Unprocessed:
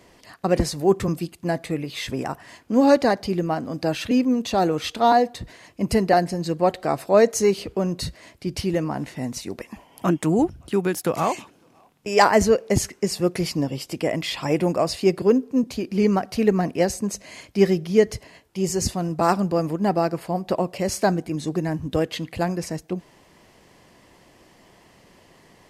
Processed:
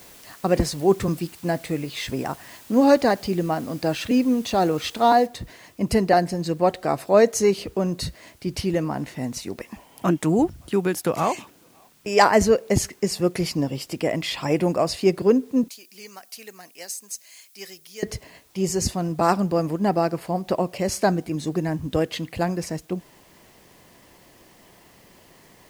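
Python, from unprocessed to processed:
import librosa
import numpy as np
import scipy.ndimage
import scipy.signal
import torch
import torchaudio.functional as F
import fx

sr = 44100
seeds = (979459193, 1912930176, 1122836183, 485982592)

y = fx.noise_floor_step(x, sr, seeds[0], at_s=5.26, before_db=-48, after_db=-59, tilt_db=0.0)
y = fx.differentiator(y, sr, at=(15.68, 18.03))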